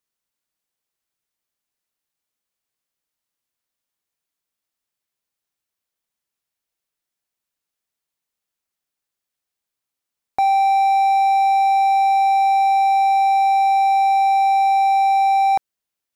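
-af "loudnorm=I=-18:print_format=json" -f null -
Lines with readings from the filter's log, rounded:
"input_i" : "-16.1",
"input_tp" : "-10.6",
"input_lra" : "2.6",
"input_thresh" : "-26.2",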